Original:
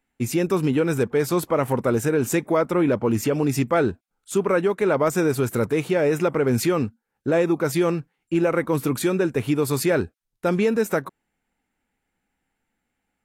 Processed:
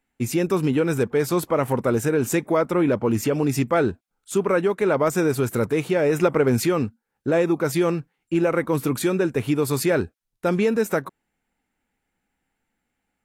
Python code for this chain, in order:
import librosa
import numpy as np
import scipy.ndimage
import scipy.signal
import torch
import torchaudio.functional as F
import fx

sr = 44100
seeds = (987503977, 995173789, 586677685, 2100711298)

y = fx.transient(x, sr, attack_db=6, sustain_db=2, at=(6.09, 6.57))